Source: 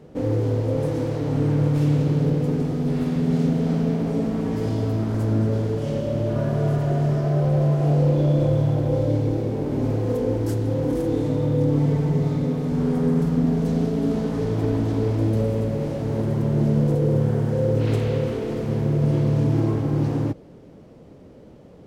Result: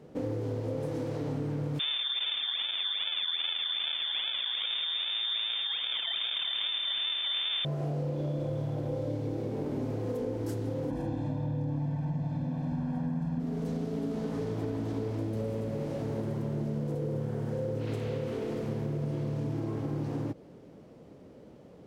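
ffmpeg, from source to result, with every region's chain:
ffmpeg -i in.wav -filter_complex "[0:a]asettb=1/sr,asplit=3[link_01][link_02][link_03];[link_01]atrim=end=1.794[link_04];[link_02]atrim=start=1.79:end=7.65,asetpts=PTS-STARTPTS,afade=type=in:duration=0.004:curve=qsin,afade=type=out:start_time=5.856:duration=0.004:curve=qsin,acrusher=samples=35:mix=1:aa=0.000001:lfo=1:lforange=35:lforate=2.5,lowpass=frequency=3100:width_type=q:width=0.5098,lowpass=frequency=3100:width_type=q:width=0.6013,lowpass=frequency=3100:width_type=q:width=0.9,lowpass=frequency=3100:width_type=q:width=2.563,afreqshift=-3700[link_05];[link_03]atrim=start=7.646[link_06];[link_04][link_05]acrossfade=duration=0.004:curve1=hsin:curve2=qsin[link_07];[link_07][link_06]acrossfade=duration=0.004:curve1=qsin:curve2=hsin,asettb=1/sr,asplit=3[link_08][link_09][link_10];[link_08]atrim=end=10.904[link_11];[link_09]atrim=start=10.9:end=13.4,asetpts=PTS-STARTPTS,afade=type=in:duration=0.004:curve=qsin,afade=type=out:start_time=2.496:duration=0.004:curve=qsin,lowpass=frequency=2000:poles=1,aecho=1:1:1.2:0.98,atrim=end_sample=110250[link_12];[link_10]atrim=start=13.396[link_13];[link_11][link_12]acrossfade=duration=0.004:curve1=hsin:curve2=qsin[link_14];[link_14][link_13]acrossfade=duration=0.004:curve1=qsin:curve2=hsin,lowshelf=frequency=77:gain=-10,acompressor=threshold=-25dB:ratio=6,volume=-4.5dB" out.wav

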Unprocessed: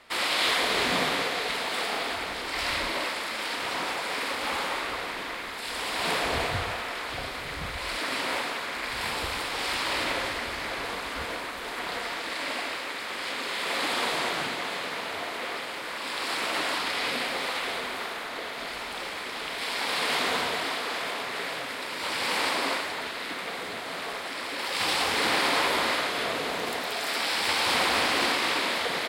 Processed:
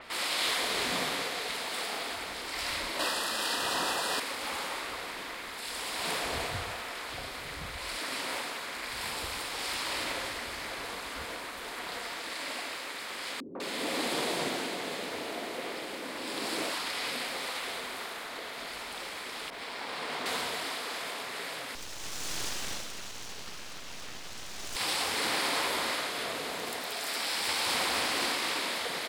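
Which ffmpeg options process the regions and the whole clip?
ffmpeg -i in.wav -filter_complex "[0:a]asettb=1/sr,asplit=3[link_01][link_02][link_03];[link_01]atrim=end=2.994[link_04];[link_02]atrim=start=2.99:end=4.2,asetpts=PTS-STARTPTS,afade=type=in:duration=0.004:curve=qsin,afade=type=out:start_time=1.206:duration=0.004:curve=qsin,acontrast=53,asuperstop=centerf=2200:order=8:qfactor=5[link_05];[link_03]atrim=start=4.196[link_06];[link_04][link_05]acrossfade=duration=0.004:curve1=hsin:curve2=qsin[link_07];[link_07][link_06]acrossfade=duration=0.004:curve1=qsin:curve2=hsin,asettb=1/sr,asplit=3[link_08][link_09][link_10];[link_08]atrim=end=13.404[link_11];[link_09]atrim=start=13.4:end=16.7,asetpts=PTS-STARTPTS,afade=type=in:duration=0.004:curve=qsin,afade=type=out:start_time=3.296:duration=0.004:curve=qsin,equalizer=frequency=300:width_type=o:width=2:gain=12,acrossover=split=320|1200[link_12][link_13][link_14];[link_13]adelay=150[link_15];[link_14]adelay=200[link_16];[link_12][link_15][link_16]amix=inputs=3:normalize=0,atrim=end_sample=145530[link_17];[link_10]atrim=start=16.696[link_18];[link_11][link_17]acrossfade=duration=0.004:curve1=hsin:curve2=qsin[link_19];[link_19][link_18]acrossfade=duration=0.004:curve1=qsin:curve2=hsin,asettb=1/sr,asplit=3[link_20][link_21][link_22];[link_20]atrim=end=19.504[link_23];[link_21]atrim=start=19.5:end=20.26,asetpts=PTS-STARTPTS,afade=type=in:duration=0.004:curve=qsin,afade=type=out:start_time=0.756:duration=0.004:curve=qsin,lowpass=frequency=3400:poles=1,aeval=exprs='sgn(val(0))*max(abs(val(0))-0.00178,0)':channel_layout=same,adynamicequalizer=threshold=0.0126:dfrequency=1700:dqfactor=0.7:tfrequency=1700:tqfactor=0.7:attack=5:release=100:ratio=0.375:range=2:mode=cutabove:tftype=highshelf[link_24];[link_22]atrim=start=20.256[link_25];[link_23][link_24]acrossfade=duration=0.004:curve1=hsin:curve2=qsin[link_26];[link_26][link_25]acrossfade=duration=0.004:curve1=qsin:curve2=hsin,asettb=1/sr,asplit=3[link_27][link_28][link_29];[link_27]atrim=end=21.754[link_30];[link_28]atrim=start=21.75:end=24.76,asetpts=PTS-STARTPTS,afade=type=in:duration=0.004:curve=qsin,afade=type=out:start_time=3.006:duration=0.004:curve=qsin,highpass=540,lowpass=6700,aeval=exprs='abs(val(0))':channel_layout=same[link_31];[link_29]atrim=start=24.756[link_32];[link_30][link_31]acrossfade=duration=0.004:curve1=hsin:curve2=qsin[link_33];[link_33][link_32]acrossfade=duration=0.004:curve1=qsin:curve2=hsin,acompressor=mode=upward:threshold=-30dB:ratio=2.5,adynamicequalizer=threshold=0.00794:dfrequency=4600:dqfactor=0.7:tfrequency=4600:tqfactor=0.7:attack=5:release=100:ratio=0.375:range=3.5:mode=boostabove:tftype=highshelf,volume=-6.5dB" out.wav

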